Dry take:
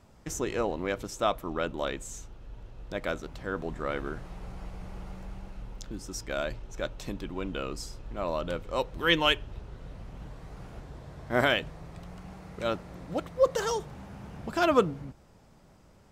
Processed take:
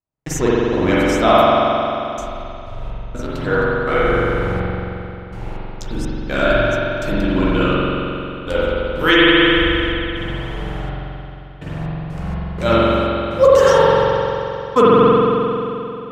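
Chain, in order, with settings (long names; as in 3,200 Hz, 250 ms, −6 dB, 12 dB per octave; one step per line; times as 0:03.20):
noise gate −48 dBFS, range −45 dB
flanger 0.28 Hz, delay 6 ms, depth 10 ms, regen +40%
gate pattern "xx.xxx...x.x." 62 BPM −60 dB
spring reverb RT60 3 s, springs 44 ms, chirp 50 ms, DRR −9 dB
boost into a limiter +14.5 dB
level −1 dB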